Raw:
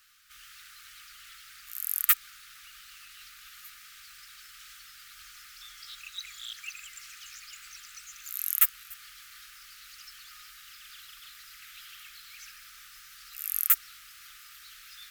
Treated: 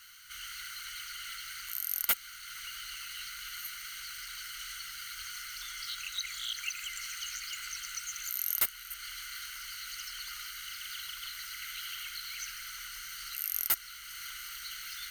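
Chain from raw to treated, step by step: ripple EQ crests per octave 1.9, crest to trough 12 dB; in parallel at +1 dB: compressor, threshold -42 dBFS, peak gain reduction 25.5 dB; on the sum: soft clip -17 dBFS, distortion -6 dB; Doppler distortion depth 0.11 ms

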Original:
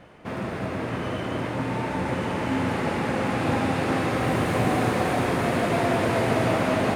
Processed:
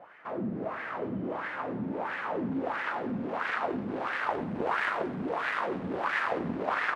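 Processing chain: added harmonics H 7 -7 dB, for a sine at -9 dBFS; wah 1.5 Hz 200–1800 Hz, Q 3.3; feedback echo 95 ms, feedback 44%, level -15.5 dB

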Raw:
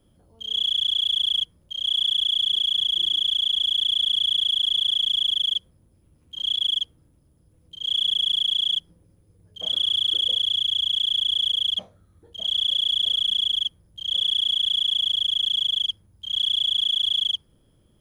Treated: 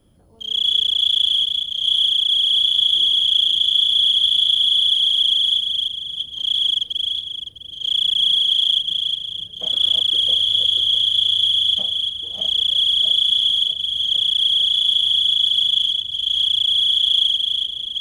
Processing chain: regenerating reverse delay 0.327 s, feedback 46%, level -3.5 dB; gain +4 dB

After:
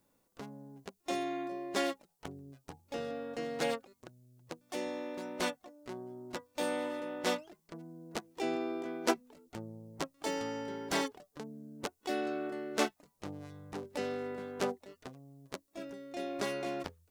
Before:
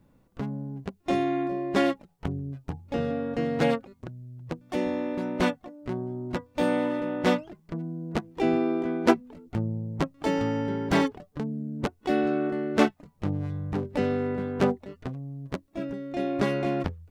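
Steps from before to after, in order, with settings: tone controls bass -13 dB, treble +12 dB; gain -7.5 dB

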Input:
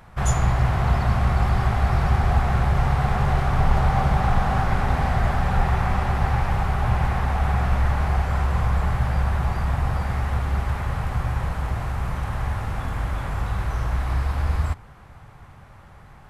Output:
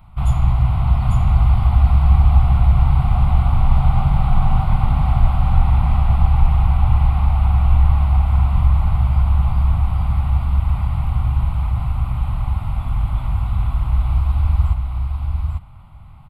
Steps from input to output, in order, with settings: low shelf 160 Hz +10 dB; fixed phaser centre 1700 Hz, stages 6; on a send: echo 0.847 s -4 dB; on the sum: gain -2.5 dB

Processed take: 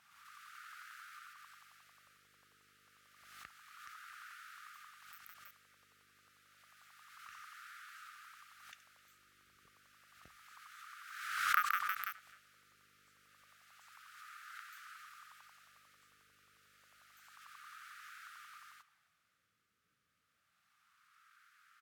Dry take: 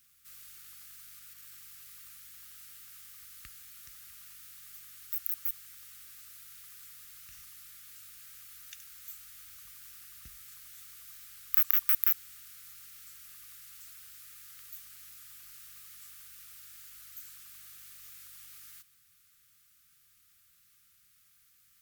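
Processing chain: speakerphone echo 0.26 s, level -16 dB; wah 0.29 Hz 450–1400 Hz, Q 3.3; backwards sustainer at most 48 dB/s; gain +15.5 dB

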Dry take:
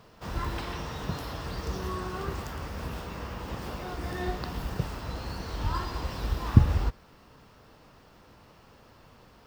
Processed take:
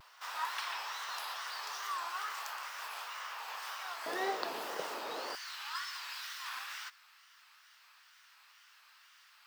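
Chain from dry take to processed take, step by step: HPF 930 Hz 24 dB/oct, from 4.06 s 390 Hz, from 5.35 s 1400 Hz; wow and flutter 130 cents; gain +1.5 dB

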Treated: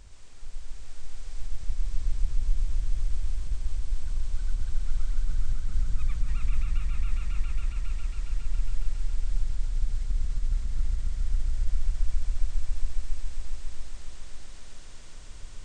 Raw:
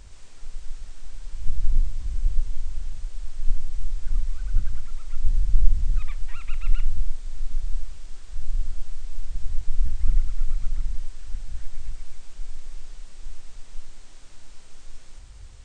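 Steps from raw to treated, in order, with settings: negative-ratio compressor -17 dBFS, ratio -0.5; swelling echo 0.137 s, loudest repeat 5, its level -5 dB; gain -6.5 dB

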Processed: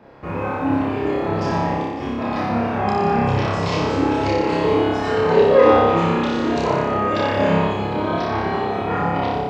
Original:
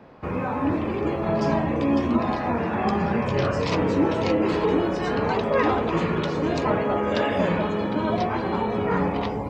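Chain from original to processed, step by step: 1.76–2.5 negative-ratio compressor -27 dBFS, ratio -1; 5.3–5.85 bell 470 Hz +12 dB 0.61 oct; flutter echo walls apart 5.1 m, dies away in 1.2 s; gain -1 dB

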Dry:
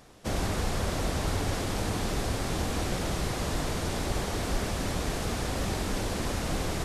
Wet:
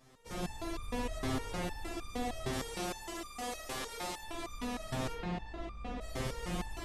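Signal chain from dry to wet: 2.53–4.23 tone controls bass -13 dB, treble +5 dB; notch 1500 Hz, Q 13; 5.12–6.01 tape spacing loss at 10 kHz 25 dB; spring tank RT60 3.7 s, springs 57 ms, chirp 70 ms, DRR -3 dB; stepped resonator 6.5 Hz 130–1200 Hz; gain +3 dB

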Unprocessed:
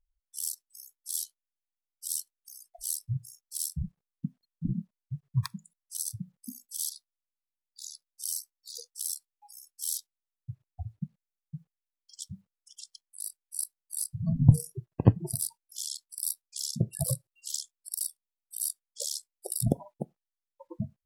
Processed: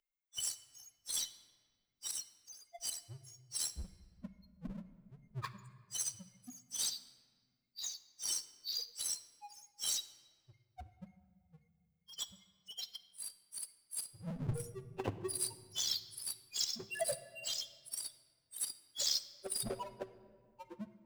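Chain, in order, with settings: per-bin expansion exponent 3; elliptic low-pass 11000 Hz, stop band 40 dB; low shelf 190 Hz +6.5 dB; auto swell 0.138 s; three-band isolator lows -19 dB, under 480 Hz, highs -15 dB, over 5600 Hz; small resonant body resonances 380/3000 Hz, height 9 dB; power-law curve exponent 0.5; on a send: reverb RT60 1.8 s, pre-delay 4 ms, DRR 11.5 dB; on the sum: gain +8 dB

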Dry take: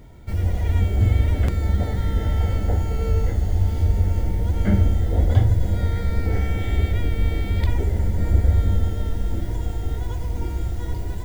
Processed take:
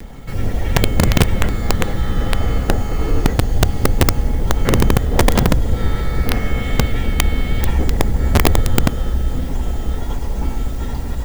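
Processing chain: minimum comb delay 3.5 ms; upward compressor, threshold -33 dBFS; frequency shift -74 Hz; wrapped overs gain 12 dB; gain +7 dB

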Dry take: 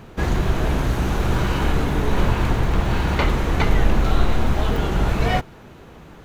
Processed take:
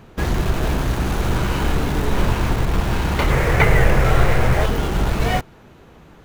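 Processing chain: 3.3–4.66 graphic EQ 125/250/500/2000/4000 Hz +9/-7/+9/+11/-5 dB; in parallel at -7 dB: bit-crush 4-bit; on the sum: gain -3 dB

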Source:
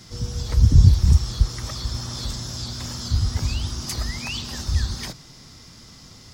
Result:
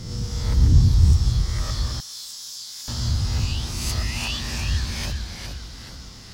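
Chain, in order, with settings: spectral swells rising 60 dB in 0.93 s; in parallel at -2.5 dB: compressor, threshold -27 dBFS, peak gain reduction 20 dB; on the sum: echoes that change speed 0.11 s, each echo -1 st, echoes 3, each echo -6 dB; 2–2.88 differentiator; gain -6 dB

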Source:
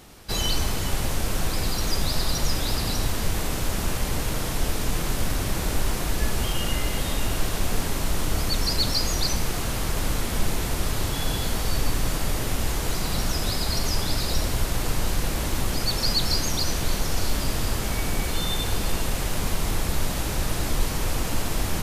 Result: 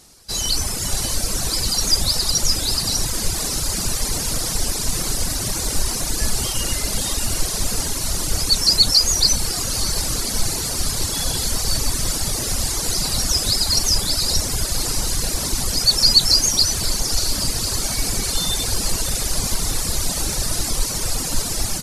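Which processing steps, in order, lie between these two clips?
diffused feedback echo 0.587 s, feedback 62%, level -9.5 dB; reverb removal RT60 1.6 s; AGC gain up to 9 dB; band shelf 6900 Hz +11.5 dB; gain -5.5 dB

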